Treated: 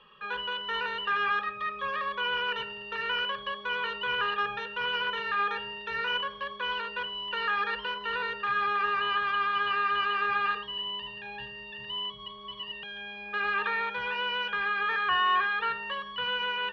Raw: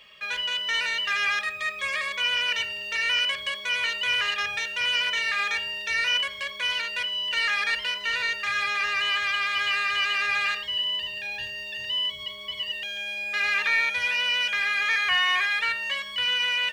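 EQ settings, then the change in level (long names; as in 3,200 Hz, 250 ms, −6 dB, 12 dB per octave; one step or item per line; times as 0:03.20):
low-pass filter 2,700 Hz 24 dB per octave
dynamic equaliser 360 Hz, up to +4 dB, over −46 dBFS, Q 0.74
phaser with its sweep stopped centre 430 Hz, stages 8
+4.5 dB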